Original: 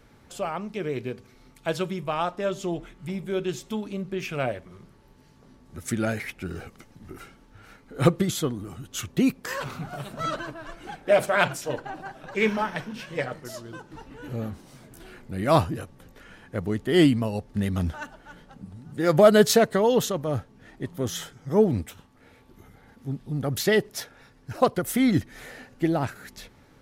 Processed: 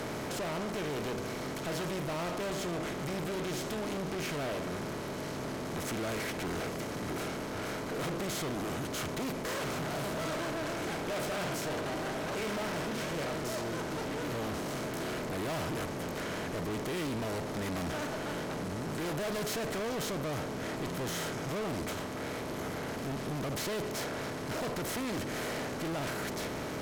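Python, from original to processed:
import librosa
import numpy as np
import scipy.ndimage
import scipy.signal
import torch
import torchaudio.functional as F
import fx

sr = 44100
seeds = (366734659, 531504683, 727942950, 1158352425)

y = fx.bin_compress(x, sr, power=0.4)
y = fx.tube_stage(y, sr, drive_db=26.0, bias=0.45)
y = F.gain(torch.from_numpy(y), -7.0).numpy()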